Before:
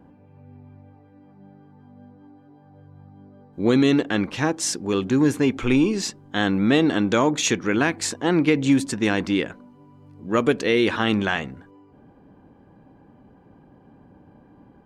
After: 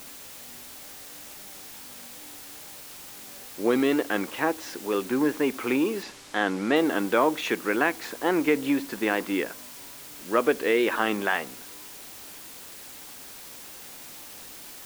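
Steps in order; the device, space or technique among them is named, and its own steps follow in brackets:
wax cylinder (band-pass filter 380–2,300 Hz; tape wow and flutter; white noise bed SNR 15 dB)
0:06.03–0:06.76: low-pass filter 7,800 Hz 12 dB per octave

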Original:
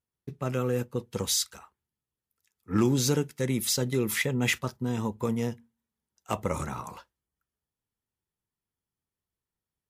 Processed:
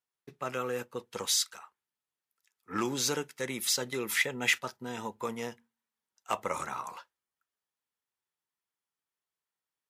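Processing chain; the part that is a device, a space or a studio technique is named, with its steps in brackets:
filter by subtraction (in parallel: low-pass filter 1,200 Hz 12 dB per octave + polarity inversion)
on the sum: high-shelf EQ 9,900 Hz −5 dB
0:04.06–0:05.18: notch filter 1,100 Hz, Q 6.4

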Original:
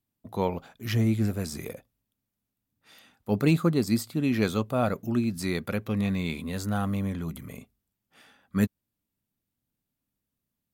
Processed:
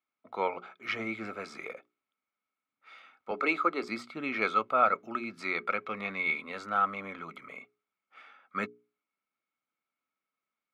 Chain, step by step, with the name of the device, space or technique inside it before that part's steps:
tin-can telephone (band-pass filter 480–3,100 Hz; hollow resonant body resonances 1,300/2,200 Hz, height 17 dB, ringing for 30 ms)
0:03.31–0:03.83: high-pass filter 240 Hz 24 dB per octave
mains-hum notches 60/120/180/240/300/360/420 Hz
level −1 dB

